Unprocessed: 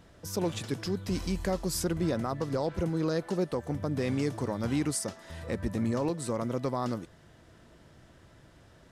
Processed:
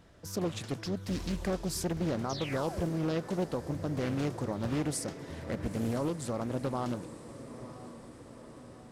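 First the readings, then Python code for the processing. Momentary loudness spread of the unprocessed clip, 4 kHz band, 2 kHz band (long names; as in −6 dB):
5 LU, −1.5 dB, −1.5 dB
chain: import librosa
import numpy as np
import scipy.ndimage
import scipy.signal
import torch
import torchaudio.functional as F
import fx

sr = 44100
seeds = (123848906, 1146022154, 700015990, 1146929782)

y = fx.echo_diffused(x, sr, ms=944, feedback_pct=59, wet_db=-13.5)
y = fx.spec_paint(y, sr, seeds[0], shape='fall', start_s=2.29, length_s=0.64, low_hz=250.0, high_hz=6400.0, level_db=-40.0)
y = fx.doppler_dist(y, sr, depth_ms=0.69)
y = y * librosa.db_to_amplitude(-2.5)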